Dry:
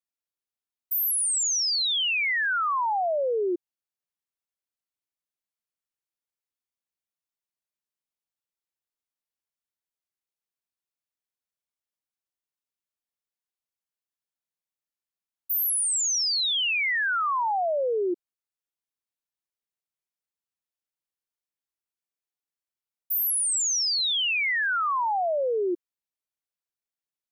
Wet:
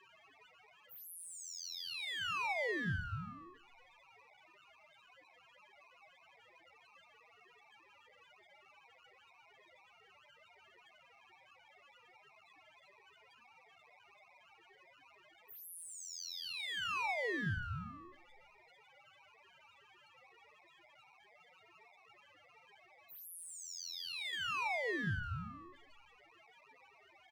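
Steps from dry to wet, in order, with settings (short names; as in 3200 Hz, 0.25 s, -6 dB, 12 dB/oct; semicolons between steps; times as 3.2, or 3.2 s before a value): per-bin compression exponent 0.2; HPF 930 Hz 12 dB/oct; loudest bins only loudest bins 1; ring modulator 730 Hz; power-law curve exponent 1.4; outdoor echo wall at 24 m, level -18 dB; on a send at -17 dB: reverb RT60 0.30 s, pre-delay 3 ms; on the sum: gain -2.5 dB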